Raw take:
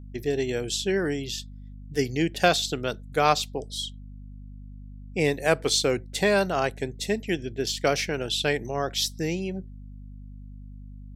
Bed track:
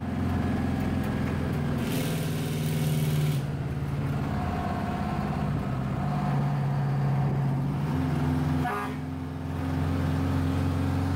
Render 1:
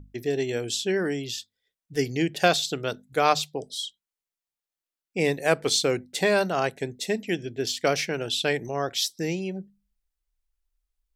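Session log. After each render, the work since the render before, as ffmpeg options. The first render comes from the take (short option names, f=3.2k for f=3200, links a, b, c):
-af "bandreject=f=50:t=h:w=6,bandreject=f=100:t=h:w=6,bandreject=f=150:t=h:w=6,bandreject=f=200:t=h:w=6,bandreject=f=250:t=h:w=6"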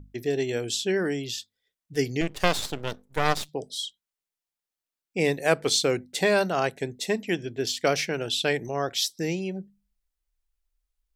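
-filter_complex "[0:a]asettb=1/sr,asplit=3[a][b][c];[a]atrim=end=2.214[d];[b]atrim=start=2.21:end=3.49,asetpts=PTS-STARTPTS,afade=t=in:d=0.004:c=qsin,afade=t=out:st=1.276:d=0.004:c=qsin,aeval=exprs='max(val(0),0)':c=same[e];[c]atrim=start=3.486[f];[d][e]acrossfade=d=0.004:c1=hsin:c2=qsin[g];[g][f]acrossfade=d=0.004:c1=qsin:c2=hsin,asettb=1/sr,asplit=3[h][i][j];[h]atrim=end=6.994[k];[i]atrim=start=6.99:end=7.6,asetpts=PTS-STARTPTS,afade=t=in:d=0.004:c=qsin,afade=t=out:st=0.606:d=0.004:c=qsin,equalizer=f=1.1k:t=o:w=0.45:g=13.5[l];[j]atrim=start=7.596[m];[k][l]acrossfade=d=0.004:c1=hsin:c2=qsin[n];[n][m]acrossfade=d=0.004:c1=qsin:c2=hsin"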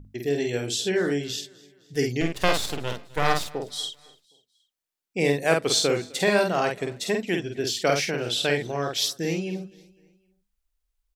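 -filter_complex "[0:a]asplit=2[a][b];[b]adelay=49,volume=-4dB[c];[a][c]amix=inputs=2:normalize=0,aecho=1:1:255|510|765:0.0668|0.0314|0.0148"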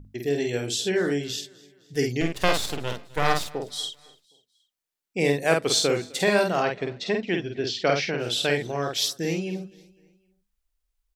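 -filter_complex "[0:a]asettb=1/sr,asplit=3[a][b][c];[a]atrim=end=6.624[d];[b]atrim=start=6.62:end=8.2,asetpts=PTS-STARTPTS,afade=t=in:d=0.004:c=qsin,afade=t=out:st=1.576:d=0.004:c=qsin,lowpass=f=5.1k:w=0.5412,lowpass=f=5.1k:w=1.3066[e];[c]atrim=start=8.196[f];[d][e]acrossfade=d=0.004:c1=hsin:c2=qsin[g];[g][f]acrossfade=d=0.004:c1=qsin:c2=hsin"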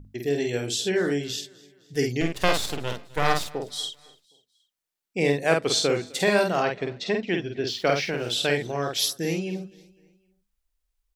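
-filter_complex "[0:a]asettb=1/sr,asplit=3[a][b][c];[a]atrim=end=5.194[d];[b]atrim=start=5.19:end=6.07,asetpts=PTS-STARTPTS,afade=t=in:d=0.004:c=qsin,afade=t=out:st=0.876:d=0.004:c=qsin,highshelf=f=11k:g=-11.5[e];[c]atrim=start=6.066[f];[d][e]acrossfade=d=0.004:c1=hsin:c2=qsin[g];[g][f]acrossfade=d=0.004:c1=qsin:c2=hsin,asettb=1/sr,asplit=3[h][i][j];[h]atrim=end=7.684[k];[i]atrim=start=7.68:end=8.35,asetpts=PTS-STARTPTS,afade=t=in:d=0.004:c=qsin,afade=t=out:st=0.666:d=0.004:c=qsin,aeval=exprs='sgn(val(0))*max(abs(val(0))-0.00355,0)':c=same[l];[j]atrim=start=8.346[m];[k][l]acrossfade=d=0.004:c1=hsin:c2=qsin[n];[n][m]acrossfade=d=0.004:c1=qsin:c2=hsin,asettb=1/sr,asplit=3[o][p][q];[o]atrim=end=8.994[r];[p]atrim=start=8.99:end=9.39,asetpts=PTS-STARTPTS,afade=t=in:d=0.004:c=qsin,afade=t=out:st=0.396:d=0.004:c=qsin,equalizer=f=11k:w=6.6:g=13[s];[q]atrim=start=9.386[t];[r][s]acrossfade=d=0.004:c1=hsin:c2=qsin[u];[u][t]acrossfade=d=0.004:c1=qsin:c2=hsin"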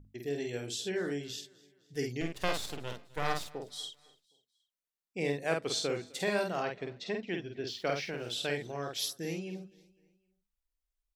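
-af "volume=-10dB"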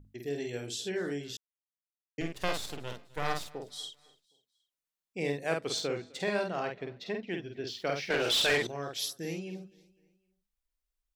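-filter_complex "[0:a]asettb=1/sr,asplit=3[a][b][c];[a]atrim=end=5.774[d];[b]atrim=start=5.77:end=7.43,asetpts=PTS-STARTPTS,afade=t=in:d=0.004:c=qsin,afade=t=out:st=1.656:d=0.004:c=qsin,adynamicsmooth=sensitivity=6.5:basefreq=5.9k[e];[c]atrim=start=7.426[f];[d][e]acrossfade=d=0.004:c1=hsin:c2=qsin[g];[g][f]acrossfade=d=0.004:c1=qsin:c2=hsin,asettb=1/sr,asplit=3[h][i][j];[h]atrim=end=8.104[k];[i]atrim=start=8.1:end=8.67,asetpts=PTS-STARTPTS,afade=t=in:d=0.004:c=qsin,afade=t=out:st=0.566:d=0.004:c=qsin,asplit=2[l][m];[m]highpass=f=720:p=1,volume=24dB,asoftclip=type=tanh:threshold=-18dB[n];[l][n]amix=inputs=2:normalize=0,lowpass=f=6.2k:p=1,volume=-6dB[o];[j]atrim=start=8.666[p];[k][o]acrossfade=d=0.004:c1=hsin:c2=qsin[q];[q][p]acrossfade=d=0.004:c1=qsin:c2=hsin,asplit=3[r][s][t];[r]atrim=end=1.37,asetpts=PTS-STARTPTS,afade=t=out:st=1.366:d=0.004:c=hsin[u];[s]atrim=start=1.37:end=2.18,asetpts=PTS-STARTPTS,volume=0[v];[t]atrim=start=2.18,asetpts=PTS-STARTPTS,afade=t=in:d=0.004:c=hsin[w];[u][v][w]concat=n=3:v=0:a=1"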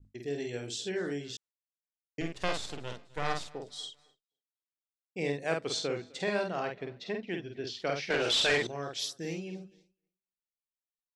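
-af "lowpass=f=8.8k:w=0.5412,lowpass=f=8.8k:w=1.3066,agate=range=-33dB:threshold=-55dB:ratio=3:detection=peak"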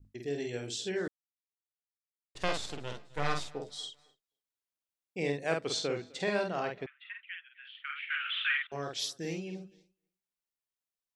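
-filter_complex "[0:a]asettb=1/sr,asplit=3[a][b][c];[a]atrim=end=2.934[d];[b]atrim=start=2.93:end=3.76,asetpts=PTS-STARTPTS,afade=t=in:d=0.004:c=qsin,afade=t=out:st=0.826:d=0.004:c=qsin,asplit=2[e][f];[f]adelay=14,volume=-6.5dB[g];[e][g]amix=inputs=2:normalize=0,atrim=end_sample=36603[h];[c]atrim=start=3.756[i];[d][h]acrossfade=d=0.004:c1=hsin:c2=qsin[j];[j][i]acrossfade=d=0.004:c1=qsin:c2=hsin,asettb=1/sr,asplit=3[k][l][m];[k]atrim=end=6.864[n];[l]atrim=start=6.86:end=8.72,asetpts=PTS-STARTPTS,afade=t=in:d=0.004:c=qsin,afade=t=out:st=1.856:d=0.004:c=qsin,asuperpass=centerf=2000:order=12:qfactor=1[o];[m]atrim=start=8.716[p];[n][o]acrossfade=d=0.004:c1=hsin:c2=qsin[q];[q][p]acrossfade=d=0.004:c1=qsin:c2=hsin,asplit=3[r][s][t];[r]atrim=end=1.08,asetpts=PTS-STARTPTS,afade=t=out:st=1.076:d=0.004:c=hsin[u];[s]atrim=start=1.08:end=2.35,asetpts=PTS-STARTPTS,volume=0[v];[t]atrim=start=2.35,asetpts=PTS-STARTPTS,afade=t=in:d=0.004:c=hsin[w];[u][v][w]concat=n=3:v=0:a=1"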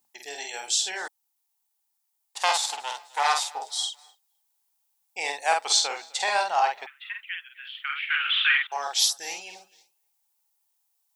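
-af "crystalizer=i=6.5:c=0,highpass=f=840:t=q:w=9.2"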